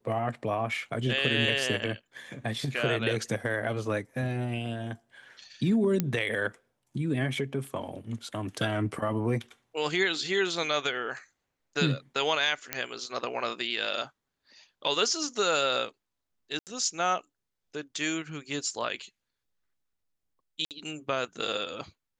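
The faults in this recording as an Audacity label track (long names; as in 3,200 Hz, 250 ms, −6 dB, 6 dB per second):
6.000000	6.000000	click −12 dBFS
12.730000	12.730000	click −10 dBFS
16.590000	16.670000	drop-out 78 ms
20.650000	20.710000	drop-out 58 ms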